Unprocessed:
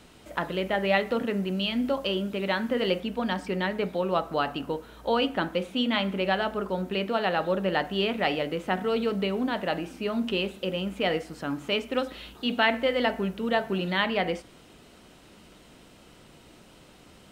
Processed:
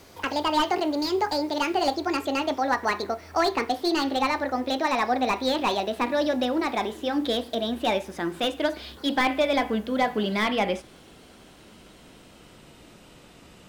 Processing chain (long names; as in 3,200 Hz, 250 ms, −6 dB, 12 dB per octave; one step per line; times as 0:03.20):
gliding playback speed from 159% → 94%
slew-rate limiting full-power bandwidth 150 Hz
level +2.5 dB